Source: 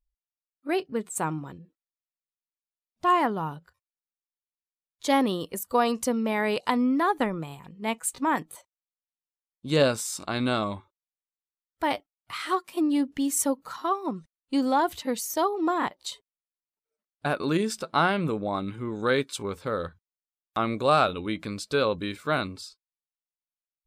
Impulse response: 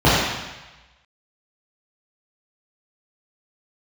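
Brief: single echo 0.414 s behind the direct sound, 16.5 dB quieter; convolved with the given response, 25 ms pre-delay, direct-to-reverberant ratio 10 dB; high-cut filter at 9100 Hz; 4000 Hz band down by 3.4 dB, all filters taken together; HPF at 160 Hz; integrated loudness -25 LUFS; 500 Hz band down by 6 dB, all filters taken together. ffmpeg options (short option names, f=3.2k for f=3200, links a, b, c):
-filter_complex "[0:a]highpass=160,lowpass=9.1k,equalizer=f=500:t=o:g=-7.5,equalizer=f=4k:t=o:g=-4,aecho=1:1:414:0.15,asplit=2[a][b];[1:a]atrim=start_sample=2205,adelay=25[c];[b][c]afir=irnorm=-1:irlink=0,volume=-36.5dB[d];[a][d]amix=inputs=2:normalize=0,volume=4.5dB"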